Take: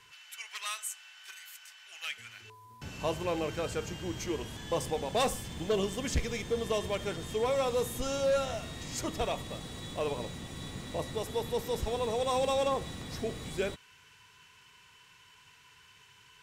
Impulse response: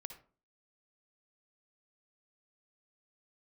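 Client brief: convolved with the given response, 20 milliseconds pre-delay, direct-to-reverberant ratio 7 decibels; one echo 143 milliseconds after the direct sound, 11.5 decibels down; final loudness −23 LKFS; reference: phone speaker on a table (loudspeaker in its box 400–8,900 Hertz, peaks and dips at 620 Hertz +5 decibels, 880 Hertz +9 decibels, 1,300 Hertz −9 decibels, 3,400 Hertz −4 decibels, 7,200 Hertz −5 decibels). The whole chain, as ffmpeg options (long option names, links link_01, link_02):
-filter_complex "[0:a]aecho=1:1:143:0.266,asplit=2[link_01][link_02];[1:a]atrim=start_sample=2205,adelay=20[link_03];[link_02][link_03]afir=irnorm=-1:irlink=0,volume=-3dB[link_04];[link_01][link_04]amix=inputs=2:normalize=0,highpass=frequency=400:width=0.5412,highpass=frequency=400:width=1.3066,equalizer=frequency=620:width_type=q:width=4:gain=5,equalizer=frequency=880:width_type=q:width=4:gain=9,equalizer=frequency=1300:width_type=q:width=4:gain=-9,equalizer=frequency=3400:width_type=q:width=4:gain=-4,equalizer=frequency=7200:width_type=q:width=4:gain=-5,lowpass=frequency=8900:width=0.5412,lowpass=frequency=8900:width=1.3066,volume=8dB"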